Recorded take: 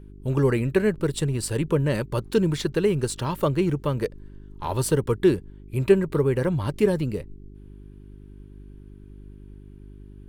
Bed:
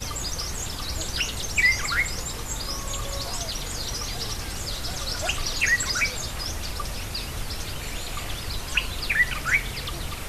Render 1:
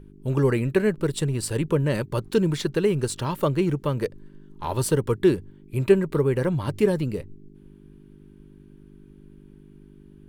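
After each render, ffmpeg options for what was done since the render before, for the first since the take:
-af "bandreject=f=50:t=h:w=4,bandreject=f=100:t=h:w=4"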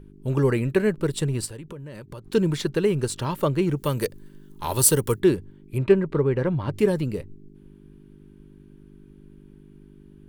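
-filter_complex "[0:a]asplit=3[a][b][c];[a]afade=t=out:st=1.45:d=0.02[d];[b]acompressor=threshold=-35dB:ratio=8:attack=3.2:release=140:knee=1:detection=peak,afade=t=in:st=1.45:d=0.02,afade=t=out:st=2.33:d=0.02[e];[c]afade=t=in:st=2.33:d=0.02[f];[d][e][f]amix=inputs=3:normalize=0,asettb=1/sr,asplit=3[g][h][i];[g]atrim=end=3.764[j];[h]atrim=start=3.76:end=5.2,asetpts=PTS-STARTPTS,afade=t=in:d=0.004:c=qsin,afade=t=out:st=1.436:d=0.004:c=qsin,aemphasis=mode=production:type=75kf[k];[i]atrim=start=5.196[l];[j][k]acrossfade=d=0.004:c1=hsin:c2=qsin[m];[m][l]acrossfade=d=0.004:c1=qsin:c2=hsin,asettb=1/sr,asplit=3[n][o][p];[n]atrim=end=5.784[q];[o]atrim=start=5.78:end=6.73,asetpts=PTS-STARTPTS,afade=t=in:d=0.004:c=qsin,afade=t=out:st=0.946:d=0.004:c=qsin,adynamicsmooth=sensitivity=1:basefreq=3.6k[r];[p]atrim=start=6.726[s];[q][r]acrossfade=d=0.004:c1=hsin:c2=qsin[t];[t][s]acrossfade=d=0.004:c1=qsin:c2=hsin"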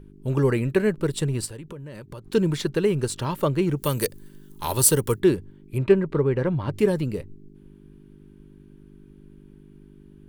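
-filter_complex "[0:a]asettb=1/sr,asplit=3[a][b][c];[a]atrim=end=3.824[d];[b]atrim=start=3.82:end=4.72,asetpts=PTS-STARTPTS,afade=t=in:d=0.004:c=qsin,afade=t=out:st=0.896:d=0.004:c=qsin,highshelf=f=4.6k:g=8.5[e];[c]atrim=start=4.716[f];[d][e]acrossfade=d=0.004:c1=hsin:c2=qsin[g];[g][f]acrossfade=d=0.004:c1=qsin:c2=hsin"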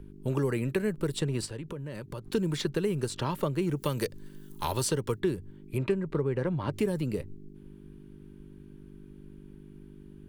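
-filter_complex "[0:a]acrossover=split=180|6700[a][b][c];[a]acompressor=threshold=-35dB:ratio=4[d];[b]acompressor=threshold=-28dB:ratio=4[e];[c]acompressor=threshold=-48dB:ratio=4[f];[d][e][f]amix=inputs=3:normalize=0"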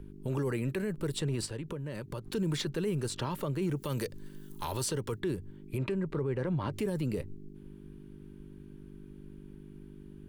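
-af "alimiter=limit=-24dB:level=0:latency=1:release=21"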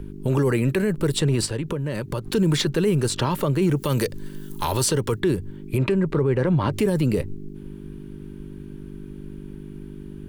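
-af "volume=11.5dB"

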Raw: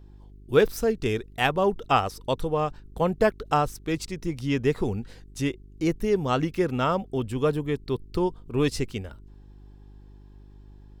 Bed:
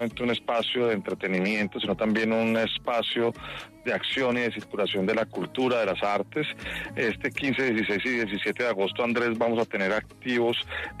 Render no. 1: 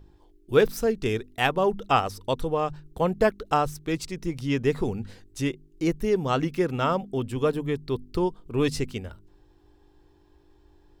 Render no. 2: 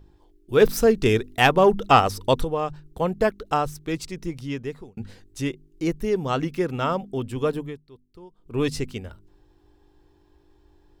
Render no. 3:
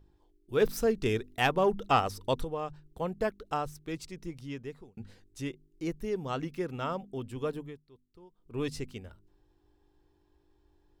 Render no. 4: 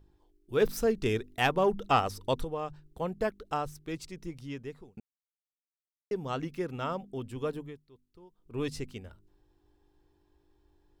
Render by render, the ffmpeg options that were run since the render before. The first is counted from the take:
-af "bandreject=f=50:t=h:w=4,bandreject=f=100:t=h:w=4,bandreject=f=150:t=h:w=4,bandreject=f=200:t=h:w=4,bandreject=f=250:t=h:w=4"
-filter_complex "[0:a]asplit=3[a][b][c];[a]afade=t=out:st=0.6:d=0.02[d];[b]acontrast=82,afade=t=in:st=0.6:d=0.02,afade=t=out:st=2.43:d=0.02[e];[c]afade=t=in:st=2.43:d=0.02[f];[d][e][f]amix=inputs=3:normalize=0,asplit=4[g][h][i][j];[g]atrim=end=4.97,asetpts=PTS-STARTPTS,afade=t=out:st=4.22:d=0.75[k];[h]atrim=start=4.97:end=7.89,asetpts=PTS-STARTPTS,afade=t=in:d=0.004:c=hsin,afade=t=out:st=2.62:d=0.3:c=qua:silence=0.0944061[l];[i]atrim=start=7.89:end=8.26,asetpts=PTS-STARTPTS,volume=-20.5dB[m];[j]atrim=start=8.26,asetpts=PTS-STARTPTS,afade=t=in:d=0.3:c=qua:silence=0.0944061[n];[k][l][m][n]concat=n=4:v=0:a=1"
-af "volume=-9.5dB"
-filter_complex "[0:a]asplit=3[a][b][c];[a]atrim=end=5,asetpts=PTS-STARTPTS,afade=t=out:st=4.996:d=0.004:c=hsin[d];[b]atrim=start=5:end=6.11,asetpts=PTS-STARTPTS,volume=0[e];[c]atrim=start=6.11,asetpts=PTS-STARTPTS,afade=t=in:d=0.004:c=hsin[f];[d][e][f]concat=n=3:v=0:a=1"

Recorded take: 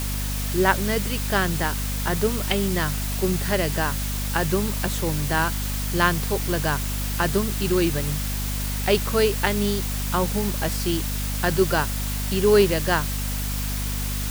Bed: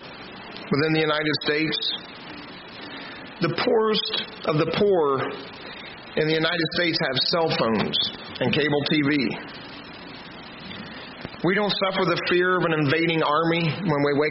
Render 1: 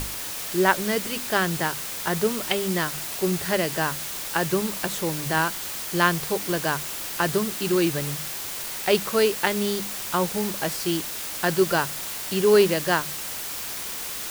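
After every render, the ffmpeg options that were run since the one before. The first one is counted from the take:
-af "bandreject=f=50:t=h:w=6,bandreject=f=100:t=h:w=6,bandreject=f=150:t=h:w=6,bandreject=f=200:t=h:w=6,bandreject=f=250:t=h:w=6"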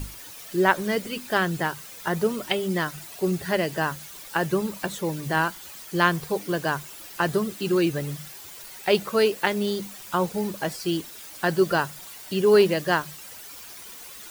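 -af "afftdn=nr=12:nf=-33"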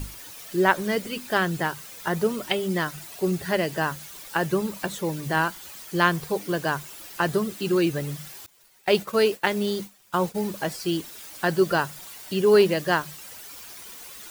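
-filter_complex "[0:a]asettb=1/sr,asplit=3[a][b][c];[a]atrim=end=8.464[d];[b]atrim=start=8.46:end=10.37,asetpts=PTS-STARTPTS,afade=t=in:d=0.004:c=qsin,afade=t=out:st=1.906:d=0.004:c=qsin,agate=range=-33dB:threshold=-32dB:ratio=3:release=100:detection=peak[e];[c]atrim=start=10.366[f];[d][e]acrossfade=d=0.004:c1=hsin:c2=qsin[g];[g][f]acrossfade=d=0.004:c1=qsin:c2=hsin"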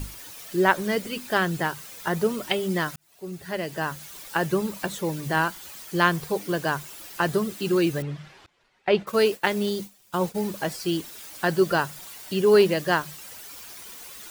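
-filter_complex "[0:a]asettb=1/sr,asplit=3[a][b][c];[a]atrim=end=8.024[d];[b]atrim=start=8.02:end=9.07,asetpts=PTS-STARTPTS,afade=t=in:d=0.004:c=qsin,afade=t=out:st=1.046:d=0.004:c=qsin,lowpass=2.8k[e];[c]atrim=start=9.066[f];[d][e]acrossfade=d=0.004:c1=hsin:c2=qsin[g];[g][f]acrossfade=d=0.004:c1=qsin:c2=hsin,asettb=1/sr,asplit=3[h][i][j];[h]atrim=end=9.694[k];[i]atrim=start=9.69:end=10.21,asetpts=PTS-STARTPTS,afade=t=in:d=0.004:c=qsin,afade=t=out:st=0.516:d=0.004:c=qsin,equalizer=f=1.4k:t=o:w=1.7:g=-5[l];[j]atrim=start=10.206[m];[k][l]acrossfade=d=0.004:c1=hsin:c2=qsin[n];[n][m]acrossfade=d=0.004:c1=qsin:c2=hsin,asplit=2[o][p];[o]atrim=end=2.96,asetpts=PTS-STARTPTS,afade=t=out:st=2.956:d=0.004:c=hsin[q];[p]atrim=start=2.96,asetpts=PTS-STARTPTS,afade=t=in:d=1.2[r];[q][r]concat=n=2:v=0:a=1"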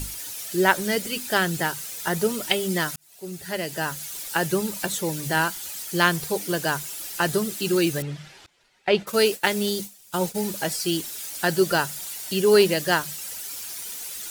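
-af "equalizer=f=10k:w=0.32:g=10,bandreject=f=1.1k:w=10"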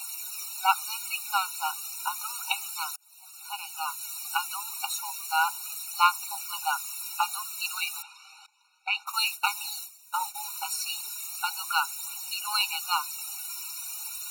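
-af "aphaser=in_gain=1:out_gain=1:delay=3.1:decay=0.37:speed=0.33:type=triangular,afftfilt=real='re*eq(mod(floor(b*sr/1024/740),2),1)':imag='im*eq(mod(floor(b*sr/1024/740),2),1)':win_size=1024:overlap=0.75"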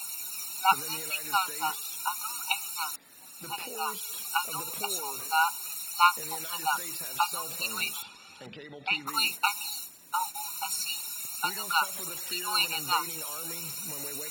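-filter_complex "[1:a]volume=-23.5dB[a];[0:a][a]amix=inputs=2:normalize=0"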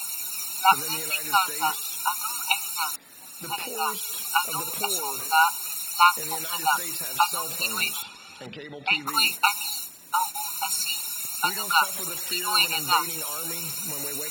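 -af "volume=5.5dB,alimiter=limit=-3dB:level=0:latency=1"

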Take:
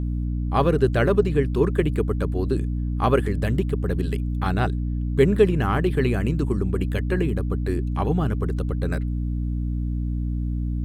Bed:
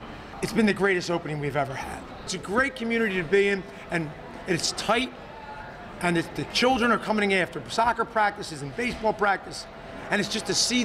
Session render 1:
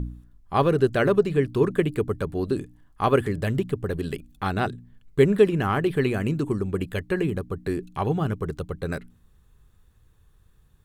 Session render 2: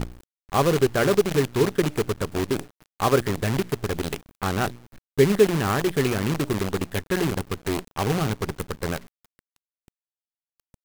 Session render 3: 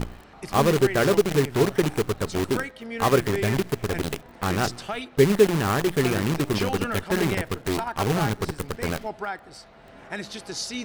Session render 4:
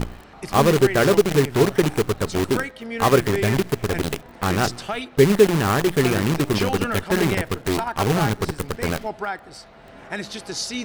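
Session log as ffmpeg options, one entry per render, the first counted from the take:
-af "bandreject=f=60:t=h:w=4,bandreject=f=120:t=h:w=4,bandreject=f=180:t=h:w=4,bandreject=f=240:t=h:w=4,bandreject=f=300:t=h:w=4"
-af "acrusher=bits=5:dc=4:mix=0:aa=0.000001"
-filter_complex "[1:a]volume=-8.5dB[a];[0:a][a]amix=inputs=2:normalize=0"
-af "volume=3.5dB,alimiter=limit=-3dB:level=0:latency=1"

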